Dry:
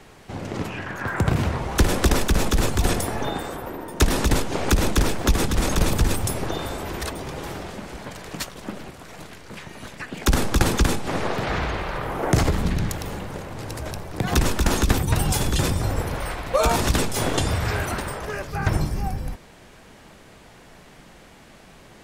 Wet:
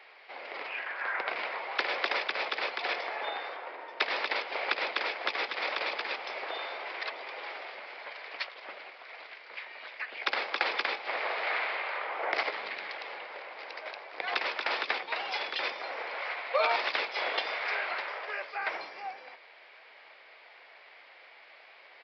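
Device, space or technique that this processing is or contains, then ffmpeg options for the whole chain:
musical greeting card: -af "aresample=11025,aresample=44100,highpass=f=530:w=0.5412,highpass=f=530:w=1.3066,equalizer=f=2200:t=o:w=0.48:g=10,volume=0.501"

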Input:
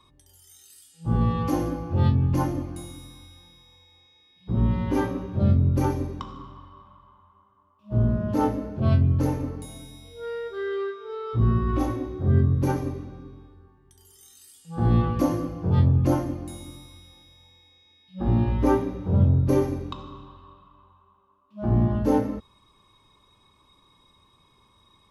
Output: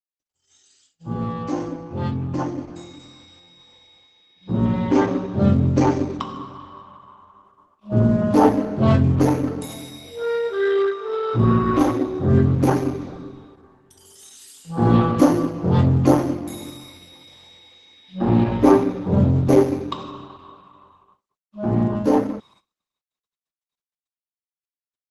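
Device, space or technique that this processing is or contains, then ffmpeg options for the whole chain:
video call: -filter_complex "[0:a]asettb=1/sr,asplit=3[s0][s1][s2];[s0]atrim=end=2.054[s3];[s1]atrim=start=2.05:end=2.69,asetpts=PTS-STARTPTS,afade=t=in:d=0.004:c=qsin,afade=t=out:st=0.636:d=0.004:c=qsin,lowpass=8600[s4];[s2]atrim=start=2.686[s5];[s3][s4]acrossfade=d=0.004:c1=hsin:c2=qsin[s6];[s6][s5]acrossfade=d=0.004:c1=qsin:c2=hsin,highpass=160,dynaudnorm=f=500:g=17:m=6.31,agate=range=0.00562:threshold=0.00224:ratio=16:detection=peak" -ar 48000 -c:a libopus -b:a 12k

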